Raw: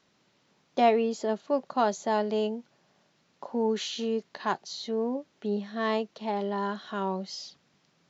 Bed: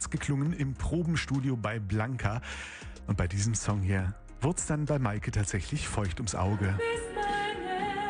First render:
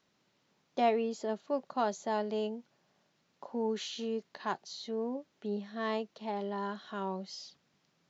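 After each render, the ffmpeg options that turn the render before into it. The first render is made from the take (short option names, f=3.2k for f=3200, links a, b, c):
-af "volume=-6dB"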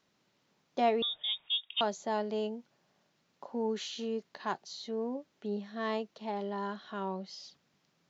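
-filter_complex "[0:a]asettb=1/sr,asplit=3[a][b][c];[a]atrim=end=1.024[d];[b]atrim=start=1.02:end=1.81,asetpts=PTS-STARTPTS,afade=t=in:d=0.004:c=qsin,afade=t=out:st=0.786:d=0.004:c=qsin,lowpass=f=3.3k:t=q:w=0.5098,lowpass=f=3.3k:t=q:w=0.6013,lowpass=f=3.3k:t=q:w=0.9,lowpass=f=3.3k:t=q:w=2.563,afreqshift=-3900[e];[c]atrim=start=1.806[f];[d][e]acrossfade=d=0.004:c1=hsin:c2=qsin[g];[g][f]acrossfade=d=0.004:c1=qsin:c2=hsin,asettb=1/sr,asplit=3[h][i][j];[h]atrim=end=6.754[k];[i]atrim=start=6.75:end=7.44,asetpts=PTS-STARTPTS,afade=t=in:d=0.004:c=qsin,afade=t=out:st=0.686:d=0.004:c=qsin,lowpass=5.7k[l];[j]atrim=start=7.436[m];[k][l]acrossfade=d=0.004:c1=hsin:c2=qsin[n];[n][m]acrossfade=d=0.004:c1=qsin:c2=hsin"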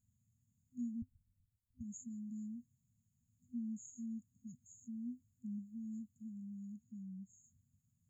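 -af "afftfilt=real='re*(1-between(b*sr/4096,250,6500))':imag='im*(1-between(b*sr/4096,250,6500))':win_size=4096:overlap=0.75,lowshelf=f=130:t=q:w=3:g=9"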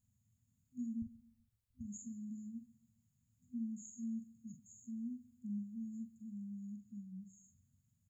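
-filter_complex "[0:a]asplit=2[a][b];[b]adelay=44,volume=-7dB[c];[a][c]amix=inputs=2:normalize=0,aecho=1:1:137|274|411:0.0944|0.0397|0.0167"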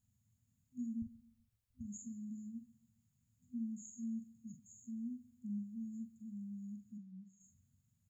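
-filter_complex "[0:a]asplit=3[a][b][c];[a]afade=t=out:st=6.97:d=0.02[d];[b]highpass=200,lowpass=4.7k,afade=t=in:st=6.97:d=0.02,afade=t=out:st=7.39:d=0.02[e];[c]afade=t=in:st=7.39:d=0.02[f];[d][e][f]amix=inputs=3:normalize=0"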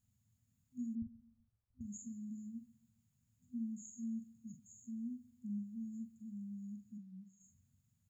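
-filter_complex "[0:a]asettb=1/sr,asplit=3[a][b][c];[a]atrim=end=0.954[d];[b]atrim=start=0.95:end=1.81,asetpts=PTS-STARTPTS,afade=t=in:d=0.004:c=qsin,afade=t=out:st=0.856:d=0.004:c=qsin,lowpass=f=1.4k:w=0.5412,lowpass=f=1.4k:w=1.3066[e];[c]atrim=start=1.806[f];[d][e]acrossfade=d=0.004:c1=hsin:c2=qsin[g];[g][f]acrossfade=d=0.004:c1=qsin:c2=hsin"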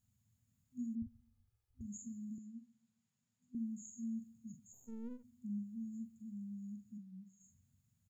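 -filter_complex "[0:a]asplit=3[a][b][c];[a]afade=t=out:st=1.05:d=0.02[d];[b]aecho=1:1:2.4:0.76,afade=t=in:st=1.05:d=0.02,afade=t=out:st=1.81:d=0.02[e];[c]afade=t=in:st=1.81:d=0.02[f];[d][e][f]amix=inputs=3:normalize=0,asettb=1/sr,asplit=3[g][h][i];[g]atrim=end=2.384[j];[h]atrim=start=2.38:end=3.55,asetpts=PTS-STARTPTS,afade=t=in:d=0.004:c=qsin,afade=t=out:st=1.166:d=0.004:c=qsin,highpass=240,lowpass=6.9k[k];[i]atrim=start=3.546[l];[j][k]acrossfade=d=0.004:c1=hsin:c2=qsin[m];[m][l]acrossfade=d=0.004:c1=qsin:c2=hsin,asplit=3[n][o][p];[n]afade=t=out:st=4.72:d=0.02[q];[o]aeval=exprs='if(lt(val(0),0),0.251*val(0),val(0))':c=same,afade=t=in:st=4.72:d=0.02,afade=t=out:st=5.23:d=0.02[r];[p]afade=t=in:st=5.23:d=0.02[s];[q][r][s]amix=inputs=3:normalize=0"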